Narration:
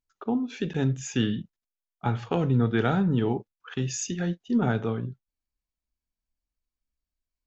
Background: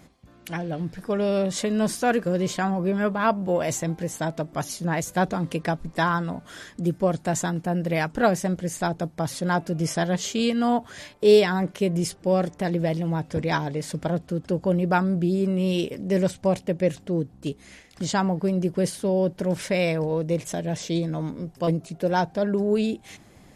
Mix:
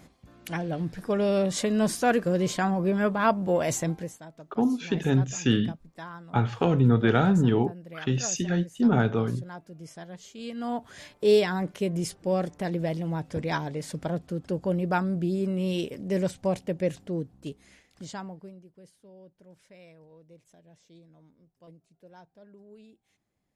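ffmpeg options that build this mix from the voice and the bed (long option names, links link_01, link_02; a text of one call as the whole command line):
ffmpeg -i stem1.wav -i stem2.wav -filter_complex "[0:a]adelay=4300,volume=2.5dB[link_01];[1:a]volume=13dB,afade=type=out:start_time=3.88:duration=0.31:silence=0.133352,afade=type=in:start_time=10.36:duration=0.71:silence=0.199526,afade=type=out:start_time=16.93:duration=1.71:silence=0.0595662[link_02];[link_01][link_02]amix=inputs=2:normalize=0" out.wav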